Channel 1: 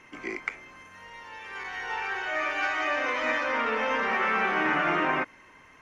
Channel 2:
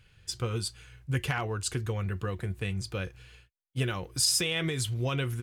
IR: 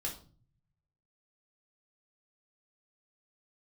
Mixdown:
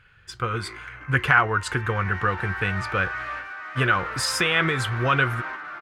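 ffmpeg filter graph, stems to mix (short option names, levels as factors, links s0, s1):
-filter_complex "[0:a]acompressor=threshold=0.0316:ratio=6,asoftclip=type=hard:threshold=0.0168,adelay=400,volume=0.316,asplit=2[s0][s1];[s1]volume=0.631[s2];[1:a]volume=1.06,asplit=2[s3][s4];[s4]apad=whole_len=278319[s5];[s0][s5]sidechaingate=range=0.0224:threshold=0.00224:ratio=16:detection=peak[s6];[s2]aecho=0:1:480:1[s7];[s6][s3][s7]amix=inputs=3:normalize=0,bass=f=250:g=-1,treble=f=4000:g=-9,dynaudnorm=f=250:g=5:m=1.68,equalizer=f=1400:t=o:w=1.2:g=14.5"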